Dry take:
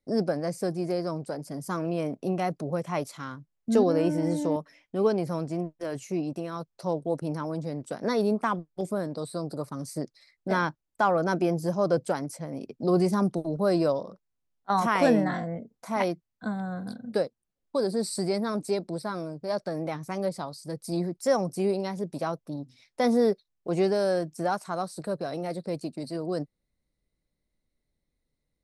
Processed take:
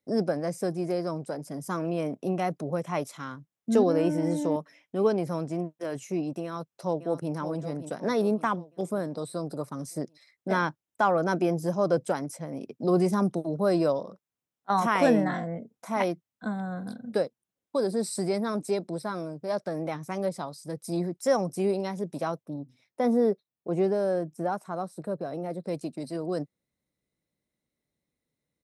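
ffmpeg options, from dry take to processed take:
-filter_complex "[0:a]asplit=2[a][b];[b]afade=t=in:st=6.43:d=0.01,afade=t=out:st=7.32:d=0.01,aecho=0:1:570|1140|1710|2280|2850:0.298538|0.149269|0.0746346|0.0373173|0.0186586[c];[a][c]amix=inputs=2:normalize=0,asettb=1/sr,asplit=3[d][e][f];[d]atrim=end=22.434[g];[e]atrim=start=22.43:end=25.66,asetpts=PTS-STARTPTS,afade=t=in:d=0.004:c=qsin,afade=t=out:st=3.226:d=0.004:c=qsin,equalizer=f=5.2k:w=0.3:g=-10.5[h];[f]atrim=start=25.656[i];[g][h]acrossfade=d=0.004:c1=hsin:c2=qsin[j];[j][i]acrossfade=d=0.004:c1=qsin:c2=hsin,highpass=110,bandreject=f=4.5k:w=7.6"

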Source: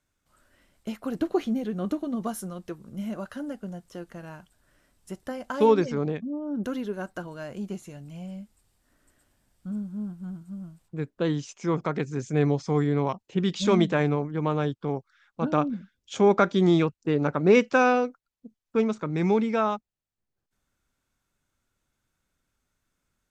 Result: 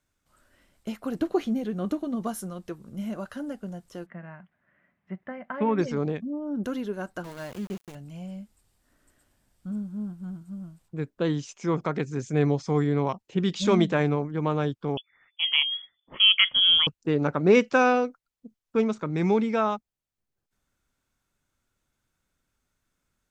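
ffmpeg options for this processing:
-filter_complex "[0:a]asplit=3[a][b][c];[a]afade=t=out:st=4.05:d=0.02[d];[b]highpass=170,equalizer=f=180:t=q:w=4:g=7,equalizer=f=300:t=q:w=4:g=-8,equalizer=f=450:t=q:w=4:g=-9,equalizer=f=880:t=q:w=4:g=-4,equalizer=f=1.4k:t=q:w=4:g=-3,equalizer=f=2k:t=q:w=4:g=7,lowpass=f=2.2k:w=0.5412,lowpass=f=2.2k:w=1.3066,afade=t=in:st=4.05:d=0.02,afade=t=out:st=5.78:d=0.02[e];[c]afade=t=in:st=5.78:d=0.02[f];[d][e][f]amix=inputs=3:normalize=0,asettb=1/sr,asplit=3[g][h][i];[g]atrim=end=7.244[j];[h]atrim=start=7.24:end=7.95,asetpts=PTS-STARTPTS,afade=t=in:d=0.004:c=qsin,afade=t=out:st=0.706:d=0.004:c=qsin,aeval=exprs='val(0)*gte(abs(val(0)),0.00944)':c=same[k];[i]atrim=start=7.946[l];[j][k]acrossfade=d=0.004:c1=hsin:c2=qsin[m];[m][l]acrossfade=d=0.004:c1=qsin:c2=hsin,asettb=1/sr,asplit=3[n][o][p];[n]atrim=end=14.974[q];[o]atrim=start=14.97:end=16.87,asetpts=PTS-STARTPTS,afade=t=in:d=0.004:c=qsin,afade=t=out:st=1.896:d=0.004:c=qsin,lowpass=f=3k:t=q:w=0.5098,lowpass=f=3k:t=q:w=0.6013,lowpass=f=3k:t=q:w=0.9,lowpass=f=3k:t=q:w=2.563,afreqshift=-3500[r];[p]atrim=start=16.866[s];[q][r]acrossfade=d=0.004:c1=hsin:c2=qsin[t];[t][s]acrossfade=d=0.004:c1=qsin:c2=hsin"

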